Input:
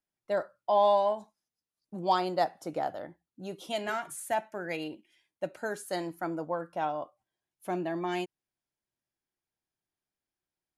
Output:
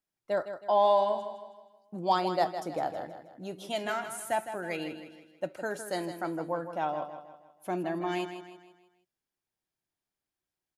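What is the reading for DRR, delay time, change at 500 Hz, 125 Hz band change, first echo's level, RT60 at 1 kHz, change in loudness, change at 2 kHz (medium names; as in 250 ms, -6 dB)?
no reverb, 159 ms, +0.5 dB, +0.5 dB, -10.0 dB, no reverb, 0.0 dB, +0.5 dB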